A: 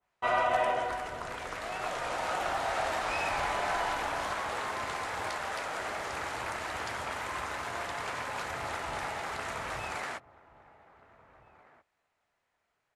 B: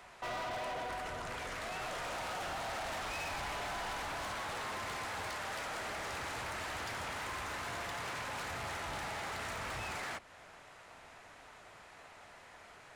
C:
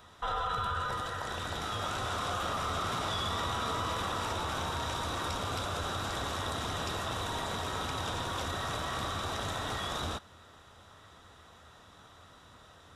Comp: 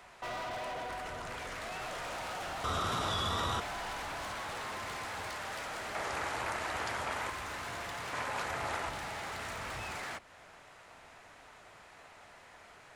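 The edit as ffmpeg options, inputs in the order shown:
-filter_complex "[0:a]asplit=2[s0][s1];[1:a]asplit=4[s2][s3][s4][s5];[s2]atrim=end=2.642[s6];[2:a]atrim=start=2.638:end=3.602[s7];[s3]atrim=start=3.598:end=5.952[s8];[s0]atrim=start=5.948:end=7.302[s9];[s4]atrim=start=7.298:end=8.132[s10];[s1]atrim=start=8.128:end=8.892[s11];[s5]atrim=start=8.888[s12];[s6][s7]acrossfade=d=0.004:c1=hsin:c2=hsin[s13];[s13][s8]acrossfade=d=0.004:c1=hsin:c2=hsin[s14];[s14][s9]acrossfade=d=0.004:c1=hsin:c2=hsin[s15];[s15][s10]acrossfade=d=0.004:c1=hsin:c2=hsin[s16];[s16][s11]acrossfade=d=0.004:c1=hsin:c2=hsin[s17];[s17][s12]acrossfade=d=0.004:c1=hsin:c2=hsin"

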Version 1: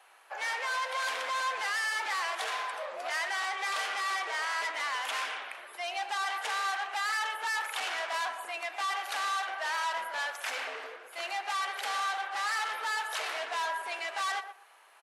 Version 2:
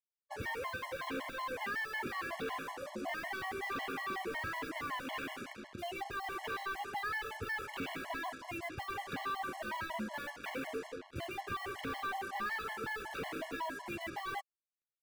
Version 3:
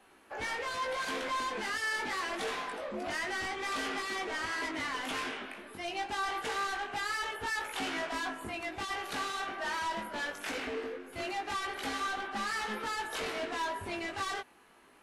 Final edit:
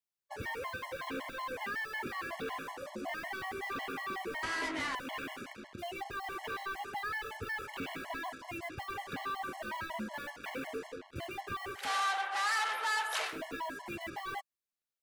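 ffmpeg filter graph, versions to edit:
-filter_complex "[1:a]asplit=3[s0][s1][s2];[s0]atrim=end=4.432[s3];[2:a]atrim=start=4.428:end=4.952[s4];[s1]atrim=start=4.948:end=11.9[s5];[0:a]atrim=start=11.74:end=13.39[s6];[s2]atrim=start=13.23[s7];[s3][s4]acrossfade=d=0.004:c1=hsin:c2=hsin[s8];[s8][s5]acrossfade=d=0.004:c1=hsin:c2=hsin[s9];[s9][s6]acrossfade=d=0.16:c1=tri:c2=tri[s10];[s10][s7]acrossfade=d=0.16:c1=tri:c2=tri"

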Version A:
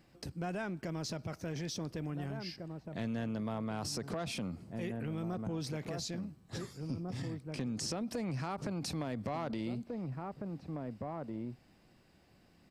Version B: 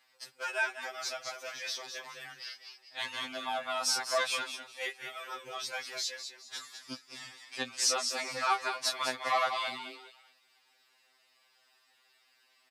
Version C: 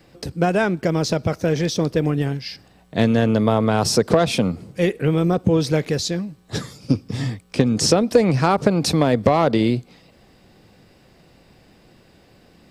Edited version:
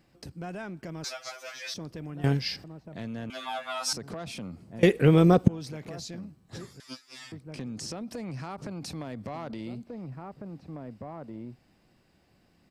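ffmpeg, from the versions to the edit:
-filter_complex "[1:a]asplit=3[s0][s1][s2];[2:a]asplit=2[s3][s4];[0:a]asplit=6[s5][s6][s7][s8][s9][s10];[s5]atrim=end=1.042[s11];[s0]atrim=start=1.038:end=1.742[s12];[s6]atrim=start=1.738:end=2.242[s13];[s3]atrim=start=2.238:end=2.642[s14];[s7]atrim=start=2.638:end=3.302[s15];[s1]atrim=start=3.298:end=3.932[s16];[s8]atrim=start=3.928:end=4.832[s17];[s4]atrim=start=4.828:end=5.482[s18];[s9]atrim=start=5.478:end=6.802[s19];[s2]atrim=start=6.798:end=7.322[s20];[s10]atrim=start=7.318[s21];[s11][s12]acrossfade=d=0.004:c1=hsin:c2=hsin[s22];[s22][s13]acrossfade=d=0.004:c1=hsin:c2=hsin[s23];[s23][s14]acrossfade=d=0.004:c1=hsin:c2=hsin[s24];[s24][s15]acrossfade=d=0.004:c1=hsin:c2=hsin[s25];[s25][s16]acrossfade=d=0.004:c1=hsin:c2=hsin[s26];[s26][s17]acrossfade=d=0.004:c1=hsin:c2=hsin[s27];[s27][s18]acrossfade=d=0.004:c1=hsin:c2=hsin[s28];[s28][s19]acrossfade=d=0.004:c1=hsin:c2=hsin[s29];[s29][s20]acrossfade=d=0.004:c1=hsin:c2=hsin[s30];[s30][s21]acrossfade=d=0.004:c1=hsin:c2=hsin"

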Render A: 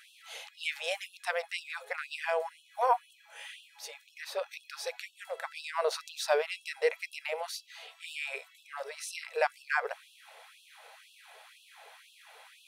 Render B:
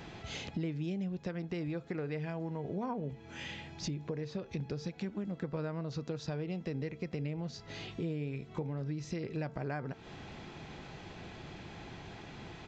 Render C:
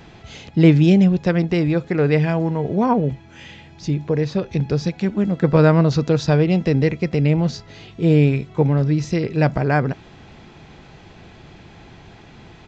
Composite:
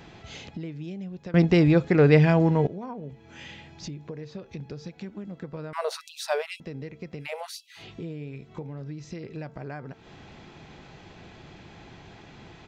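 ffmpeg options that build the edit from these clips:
-filter_complex "[0:a]asplit=2[s0][s1];[1:a]asplit=4[s2][s3][s4][s5];[s2]atrim=end=1.342[s6];[2:a]atrim=start=1.338:end=2.672[s7];[s3]atrim=start=2.668:end=5.732[s8];[s0]atrim=start=5.728:end=6.602[s9];[s4]atrim=start=6.598:end=7.28[s10];[s1]atrim=start=7.18:end=7.86[s11];[s5]atrim=start=7.76[s12];[s6][s7]acrossfade=d=0.004:c1=hsin:c2=hsin[s13];[s13][s8]acrossfade=d=0.004:c1=hsin:c2=hsin[s14];[s14][s9]acrossfade=d=0.004:c1=hsin:c2=hsin[s15];[s15][s10]acrossfade=d=0.004:c1=hsin:c2=hsin[s16];[s16][s11]acrossfade=d=0.1:c1=tri:c2=tri[s17];[s17][s12]acrossfade=d=0.1:c1=tri:c2=tri"

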